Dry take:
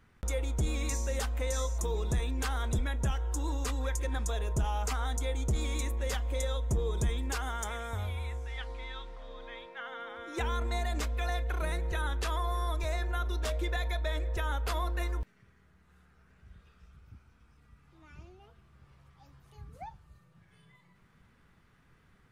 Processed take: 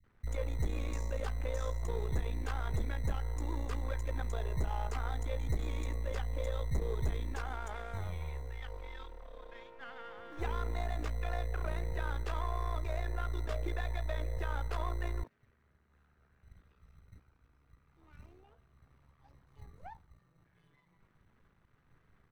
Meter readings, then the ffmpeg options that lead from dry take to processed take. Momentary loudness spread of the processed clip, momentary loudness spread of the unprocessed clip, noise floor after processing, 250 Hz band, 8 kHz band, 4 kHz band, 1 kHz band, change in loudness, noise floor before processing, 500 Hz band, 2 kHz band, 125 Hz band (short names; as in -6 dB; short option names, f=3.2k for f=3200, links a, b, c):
12 LU, 11 LU, -71 dBFS, -5.5 dB, -14.5 dB, -10.5 dB, -5.0 dB, -4.5 dB, -64 dBFS, -4.0 dB, -6.5 dB, -3.5 dB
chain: -filter_complex "[0:a]aeval=exprs='if(lt(val(0),0),0.251*val(0),val(0))':c=same,lowpass=f=1.5k:p=1,acrossover=split=200[a][b];[b]adelay=40[c];[a][c]amix=inputs=2:normalize=0,acrossover=split=230[d][e];[d]acrusher=samples=22:mix=1:aa=0.000001[f];[f][e]amix=inputs=2:normalize=0"